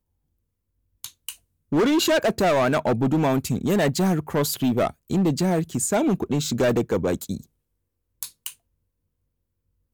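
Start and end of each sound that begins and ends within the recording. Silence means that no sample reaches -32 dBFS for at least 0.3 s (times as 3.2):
1.04–1.32
1.72–7.44
8.23–8.5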